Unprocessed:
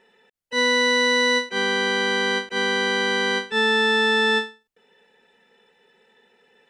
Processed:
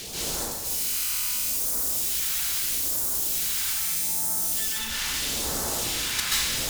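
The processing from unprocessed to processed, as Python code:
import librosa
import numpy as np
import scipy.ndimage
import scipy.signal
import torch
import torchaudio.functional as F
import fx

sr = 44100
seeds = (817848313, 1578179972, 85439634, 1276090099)

p1 = fx.dead_time(x, sr, dead_ms=0.058)
p2 = fx.over_compress(p1, sr, threshold_db=-42.0, ratio=-0.5)
p3 = p1 + (p2 * 10.0 ** (-1.0 / 20.0))
p4 = fx.fold_sine(p3, sr, drive_db=20, ceiling_db=-26.0)
p5 = fx.phaser_stages(p4, sr, stages=2, low_hz=380.0, high_hz=2700.0, hz=0.78, feedback_pct=25)
p6 = fx.level_steps(p5, sr, step_db=15)
p7 = fx.high_shelf(p6, sr, hz=4400.0, db=5.0)
p8 = fx.rev_plate(p7, sr, seeds[0], rt60_s=1.2, hf_ratio=0.85, predelay_ms=120, drr_db=-9.0)
y = p8 * 10.0 ** (5.0 / 20.0)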